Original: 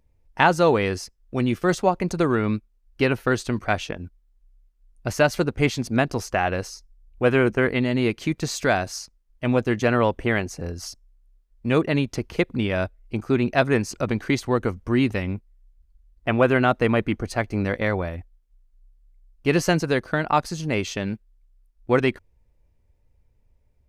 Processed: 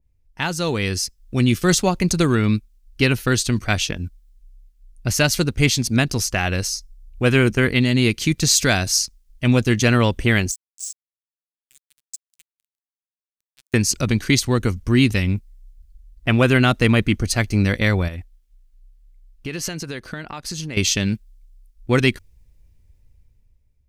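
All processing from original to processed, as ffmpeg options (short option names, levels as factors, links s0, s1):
-filter_complex "[0:a]asettb=1/sr,asplit=3[s0][s1][s2];[s0]atrim=end=10.514[s3];[s1]atrim=start=10.51:end=13.74,asetpts=PTS-STARTPTS,afade=t=in:d=0.004:c=qsin,afade=t=out:st=3.226:d=0.004:c=qsin,bandpass=f=7700:t=q:w=14,aemphasis=mode=production:type=75kf,aeval=exprs='sgn(val(0))*max(abs(val(0))-0.00531,0)':c=same[s4];[s2]atrim=start=13.736[s5];[s3][s4]acrossfade=d=0.004:c1=hsin:c2=qsin[s6];[s6][s5]acrossfade=d=0.004:c1=qsin:c2=hsin,asettb=1/sr,asplit=3[s7][s8][s9];[s7]atrim=end=18.084[s10];[s8]atrim=start=18.08:end=20.77,asetpts=PTS-STARTPTS,afade=t=in:d=0.004:c=qsin,afade=t=out:st=2.686:d=0.004:c=qsin,bass=f=250:g=-6,treble=f=4000:g=-4,acompressor=threshold=0.02:ratio=3:attack=3.2:release=140:knee=1:detection=peak[s11];[s9]atrim=start=20.766[s12];[s10][s11]acrossfade=d=0.004:c1=hsin:c2=qsin[s13];[s13][s12]acrossfade=d=0.004:c1=qsin:c2=hsin,equalizer=f=720:t=o:w=2.7:g=-13,dynaudnorm=f=180:g=9:m=3.76,adynamicequalizer=threshold=0.0178:dfrequency=2900:dqfactor=0.7:tfrequency=2900:tqfactor=0.7:attack=5:release=100:ratio=0.375:range=3:mode=boostabove:tftype=highshelf"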